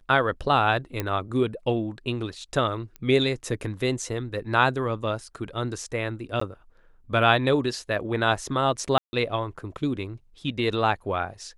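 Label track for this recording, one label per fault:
1.000000	1.000000	pop -12 dBFS
2.960000	2.960000	pop -23 dBFS
6.400000	6.410000	dropout 14 ms
8.980000	9.130000	dropout 150 ms

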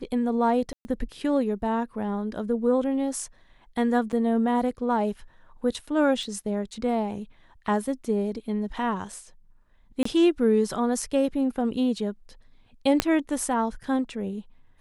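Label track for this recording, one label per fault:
0.730000	0.850000	dropout 120 ms
4.120000	4.130000	dropout 7.4 ms
6.230000	6.230000	dropout 2.7 ms
10.030000	10.050000	dropout 24 ms
13.000000	13.000000	pop -5 dBFS

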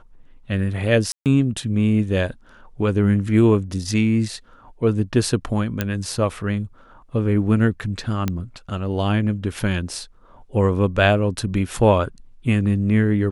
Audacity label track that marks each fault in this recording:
1.120000	1.260000	dropout 138 ms
5.810000	5.810000	pop -7 dBFS
8.280000	8.280000	pop -9 dBFS

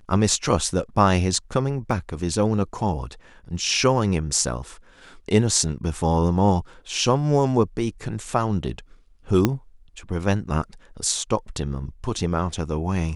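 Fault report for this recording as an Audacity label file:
1.910000	1.910000	dropout 2.3 ms
9.450000	9.450000	pop -5 dBFS

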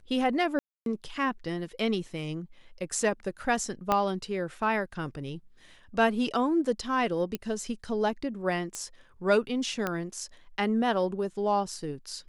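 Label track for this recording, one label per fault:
0.590000	0.860000	dropout 272 ms
3.920000	3.920000	pop -11 dBFS
7.350000	7.350000	pop -17 dBFS
8.750000	8.750000	pop -20 dBFS
9.870000	9.870000	pop -15 dBFS

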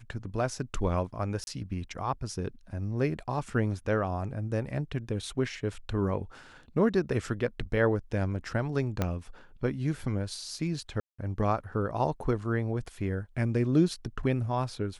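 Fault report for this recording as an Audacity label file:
1.440000	1.470000	dropout 31 ms
9.020000	9.020000	pop -14 dBFS
11.000000	11.190000	dropout 185 ms

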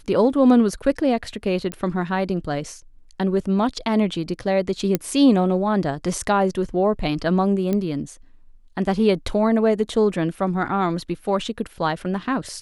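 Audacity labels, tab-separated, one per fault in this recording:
1.720000	1.720000	pop -14 dBFS
4.950000	4.950000	pop -6 dBFS
7.730000	7.730000	pop -12 dBFS

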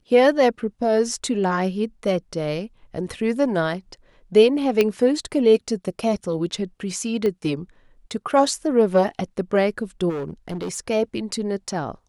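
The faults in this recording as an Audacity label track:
4.810000	4.810000	pop -7 dBFS
7.260000	7.260000	pop -14 dBFS
10.090000	10.780000	clipped -24.5 dBFS

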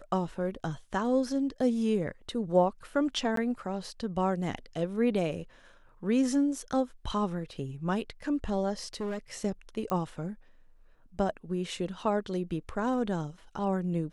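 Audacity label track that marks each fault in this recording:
3.360000	3.370000	dropout 13 ms
8.930000	9.190000	clipped -30 dBFS
9.900000	9.900000	pop -19 dBFS

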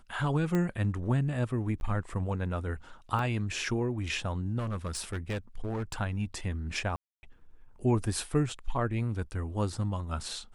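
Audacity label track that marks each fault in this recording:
0.550000	0.550000	pop -18 dBFS
1.800000	1.810000	dropout 11 ms
3.190000	3.190000	dropout 2.4 ms
4.580000	6.010000	clipped -29.5 dBFS
6.960000	7.230000	dropout 270 ms

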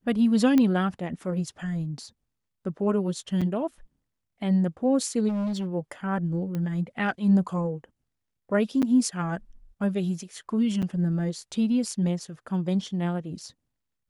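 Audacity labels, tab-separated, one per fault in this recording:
0.580000	0.580000	pop -11 dBFS
3.410000	3.420000	dropout 5.9 ms
5.280000	5.670000	clipped -25.5 dBFS
6.550000	6.550000	pop -20 dBFS
8.820000	8.830000	dropout 7.7 ms
10.820000	10.830000	dropout 7.1 ms

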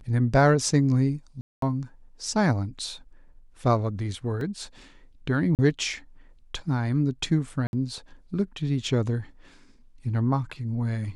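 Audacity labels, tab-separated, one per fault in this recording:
1.410000	1.620000	dropout 213 ms
4.410000	4.410000	dropout 2.1 ms
5.550000	5.590000	dropout 38 ms
7.670000	7.730000	dropout 61 ms

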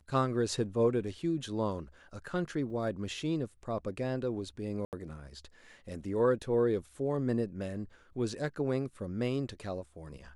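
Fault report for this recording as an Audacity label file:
2.700000	2.700000	dropout 4.1 ms
4.850000	4.930000	dropout 78 ms

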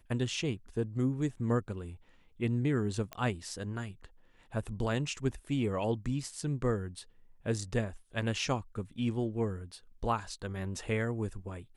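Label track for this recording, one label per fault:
3.130000	3.130000	pop -23 dBFS

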